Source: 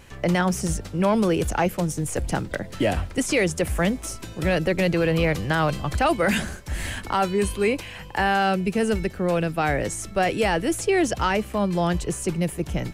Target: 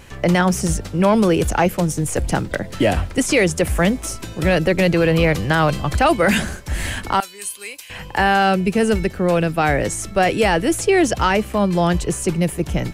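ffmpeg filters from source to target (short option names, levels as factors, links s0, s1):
-filter_complex "[0:a]asettb=1/sr,asplit=3[s0][s1][s2];[s0]atrim=end=7.204[s3];[s1]atrim=start=7.2:end=7.9,asetpts=PTS-STARTPTS,afade=t=in:d=0.004:c=qsin,afade=t=out:st=0.696:d=0.004:c=qsin,aderivative[s4];[s2]atrim=start=7.896[s5];[s3][s4]acrossfade=d=0.004:c1=hsin:c2=qsin[s6];[s6][s5]acrossfade=d=0.004:c1=qsin:c2=hsin,volume=1.88"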